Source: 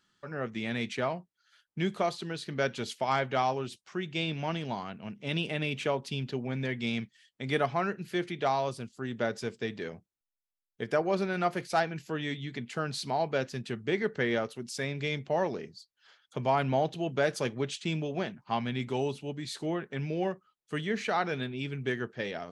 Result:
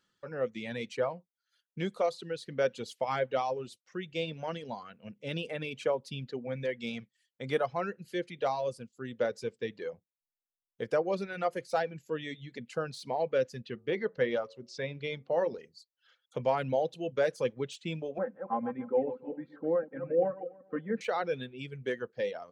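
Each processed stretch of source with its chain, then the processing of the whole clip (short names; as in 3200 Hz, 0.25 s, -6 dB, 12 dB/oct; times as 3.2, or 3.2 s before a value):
13.62–15.58 LPF 5500 Hz 24 dB/oct + de-hum 92.02 Hz, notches 14
18.18–21.01 regenerating reverse delay 0.143 s, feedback 42%, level -6 dB + Chebyshev band-pass 130–1500 Hz, order 3 + comb 3.8 ms, depth 72%
whole clip: reverb removal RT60 1.5 s; de-esser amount 95%; bell 510 Hz +15 dB 0.23 oct; gain -4 dB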